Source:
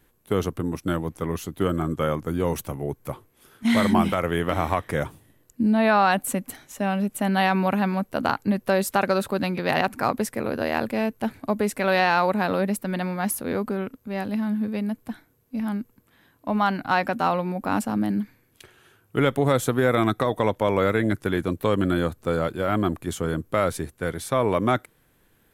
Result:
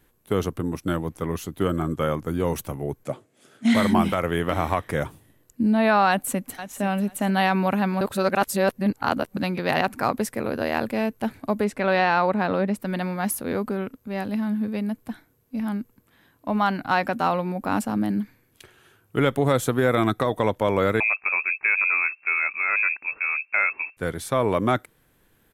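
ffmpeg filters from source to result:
-filter_complex "[0:a]asplit=3[a][b][c];[a]afade=t=out:st=3.03:d=0.02[d];[b]highpass=f=120:w=0.5412,highpass=f=120:w=1.3066,equalizer=f=260:t=q:w=4:g=4,equalizer=f=620:t=q:w=4:g=8,equalizer=f=1k:t=q:w=4:g=-8,equalizer=f=7.2k:t=q:w=4:g=5,lowpass=f=9.6k:w=0.5412,lowpass=f=9.6k:w=1.3066,afade=t=in:st=3.03:d=0.02,afade=t=out:st=3.73:d=0.02[e];[c]afade=t=in:st=3.73:d=0.02[f];[d][e][f]amix=inputs=3:normalize=0,asplit=2[g][h];[h]afade=t=in:st=6.09:d=0.01,afade=t=out:st=6.81:d=0.01,aecho=0:1:490|980:0.223872|0.0335808[i];[g][i]amix=inputs=2:normalize=0,asettb=1/sr,asplit=3[j][k][l];[j]atrim=end=11.644[m];[k]atrim=start=11.64:end=12.8,asetpts=PTS-STARTPTS,afade=t=in:d=0.004:c=qsin,afade=t=out:st=1.156:d=0.004:c=qsin,aemphasis=mode=reproduction:type=50fm[n];[l]atrim=start=12.796[o];[m][n]acrossfade=d=0.004:c1=hsin:c2=qsin[p];[p][o]acrossfade=d=0.004:c1=qsin:c2=hsin,asettb=1/sr,asplit=3[q][r][s];[q]atrim=end=21.004[t];[r]atrim=start=21:end=23.97,asetpts=PTS-STARTPTS,afade=t=in:d=0.004:c=qsin,afade=t=out:st=2.966:d=0.004:c=qsin,lowpass=f=2.3k:t=q:w=0.5098,lowpass=f=2.3k:t=q:w=0.6013,lowpass=f=2.3k:t=q:w=0.9,lowpass=f=2.3k:t=q:w=2.563,afreqshift=-2700[u];[s]atrim=start=23.966[v];[t][u]acrossfade=d=0.004:c1=hsin:c2=qsin[w];[w][v]acrossfade=d=0.004:c1=qsin:c2=hsin,asplit=3[x][y][z];[x]atrim=end=8.012[aa];[y]atrim=start=8.008:end=9.372,asetpts=PTS-STARTPTS,areverse[ab];[z]atrim=start=9.368[ac];[aa][ab]acrossfade=d=0.004:c1=hsin:c2=hsin[ad];[ad][ac]acrossfade=d=0.004:c1=hsin:c2=hsin"

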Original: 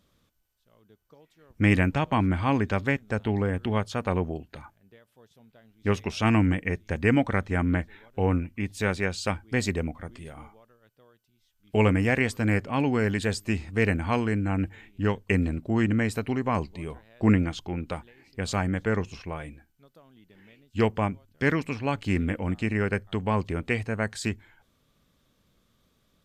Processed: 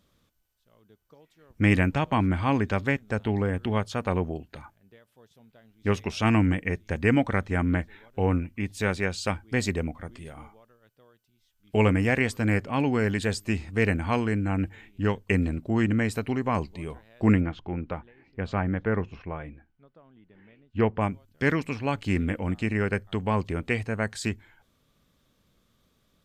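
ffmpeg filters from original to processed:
-filter_complex "[0:a]asettb=1/sr,asplit=3[a][b][c];[a]atrim=end=17.404[d];[b]atrim=start=17.4:end=21.01,asetpts=PTS-STARTPTS,afade=t=in:d=0.004:c=qsin,afade=t=out:st=3.606:d=0.004:c=qsin,lowpass=2.1k[e];[c]atrim=start=21.006[f];[d][e]acrossfade=d=0.004:c1=hsin:c2=qsin[g];[g][f]acrossfade=d=0.004:c1=qsin:c2=hsin"

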